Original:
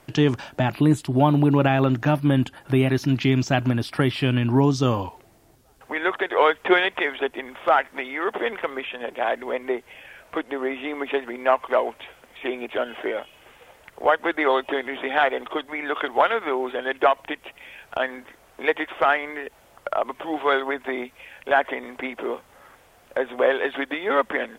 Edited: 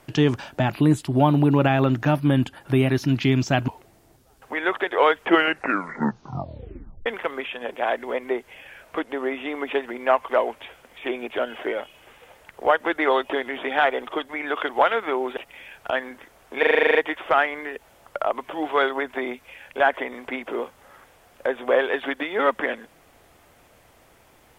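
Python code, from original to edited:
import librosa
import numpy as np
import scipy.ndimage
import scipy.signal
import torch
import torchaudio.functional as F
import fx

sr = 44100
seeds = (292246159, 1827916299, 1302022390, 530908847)

y = fx.edit(x, sr, fx.cut(start_s=3.68, length_s=1.39),
    fx.tape_stop(start_s=6.58, length_s=1.87),
    fx.cut(start_s=16.76, length_s=0.68),
    fx.stutter(start_s=18.66, slice_s=0.04, count=10), tone=tone)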